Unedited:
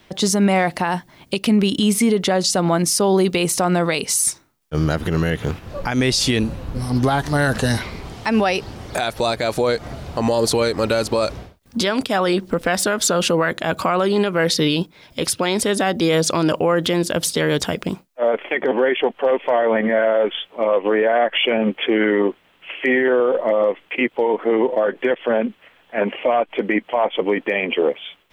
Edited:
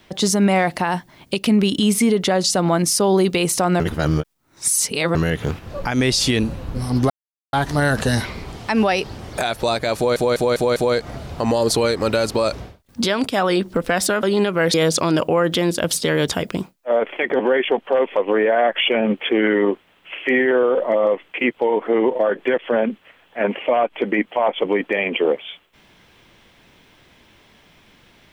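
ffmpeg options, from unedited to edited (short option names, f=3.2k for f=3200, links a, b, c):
-filter_complex "[0:a]asplit=11[a][b][c][d][e][f][g][h][i][j][k];[a]atrim=end=3.802[l];[b]atrim=start=3.798:end=5.152,asetpts=PTS-STARTPTS,areverse[m];[c]atrim=start=5.148:end=7.1,asetpts=PTS-STARTPTS,afade=t=out:st=1.948:d=0.004:c=hsin,apad=pad_dur=0.43[n];[d]atrim=start=7.1:end=9.732,asetpts=PTS-STARTPTS,afade=t=in:d=0.004:c=hsin[o];[e]atrim=start=9.528:end=9.732[p];[f]atrim=start=9.528:end=9.732[q];[g]atrim=start=9.528:end=9.732[r];[h]atrim=start=9.528:end=13.002[s];[i]atrim=start=14.018:end=14.532[t];[j]atrim=start=16.058:end=19.492[u];[k]atrim=start=20.738[v];[l][m]acrossfade=d=0.004:c1=hsin:c2=hsin[w];[n][o]concat=n=2:v=0:a=1[x];[w][x]acrossfade=d=0.004:c1=hsin:c2=hsin[y];[y][p]acrossfade=d=0.004:c1=hsin:c2=hsin[z];[z][q]acrossfade=d=0.004:c1=hsin:c2=hsin[aa];[aa][r]acrossfade=d=0.004:c1=hsin:c2=hsin[ab];[ab][s]acrossfade=d=0.004:c1=hsin:c2=hsin[ac];[ac][t]acrossfade=d=0.004:c1=hsin:c2=hsin[ad];[ad][u]acrossfade=d=0.004:c1=hsin:c2=hsin[ae];[ae][v]acrossfade=d=0.004:c1=hsin:c2=hsin"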